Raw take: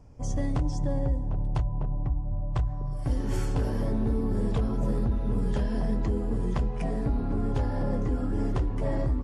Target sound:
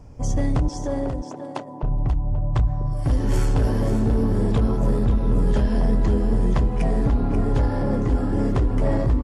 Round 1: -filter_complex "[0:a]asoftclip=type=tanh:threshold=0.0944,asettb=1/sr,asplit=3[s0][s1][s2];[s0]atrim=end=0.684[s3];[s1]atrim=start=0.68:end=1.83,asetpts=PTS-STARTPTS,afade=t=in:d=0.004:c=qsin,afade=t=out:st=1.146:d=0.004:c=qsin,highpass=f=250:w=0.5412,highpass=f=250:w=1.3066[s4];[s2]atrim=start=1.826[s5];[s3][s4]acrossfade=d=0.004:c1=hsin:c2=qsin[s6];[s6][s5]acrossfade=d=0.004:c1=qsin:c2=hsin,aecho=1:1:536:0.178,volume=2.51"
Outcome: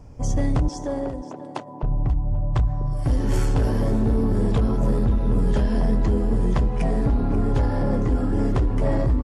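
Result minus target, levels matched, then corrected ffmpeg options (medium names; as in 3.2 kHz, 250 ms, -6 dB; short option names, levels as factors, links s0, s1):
echo-to-direct -6.5 dB
-filter_complex "[0:a]asoftclip=type=tanh:threshold=0.0944,asettb=1/sr,asplit=3[s0][s1][s2];[s0]atrim=end=0.684[s3];[s1]atrim=start=0.68:end=1.83,asetpts=PTS-STARTPTS,afade=t=in:d=0.004:c=qsin,afade=t=out:st=1.146:d=0.004:c=qsin,highpass=f=250:w=0.5412,highpass=f=250:w=1.3066[s4];[s2]atrim=start=1.826[s5];[s3][s4]acrossfade=d=0.004:c1=hsin:c2=qsin[s6];[s6][s5]acrossfade=d=0.004:c1=qsin:c2=hsin,aecho=1:1:536:0.376,volume=2.51"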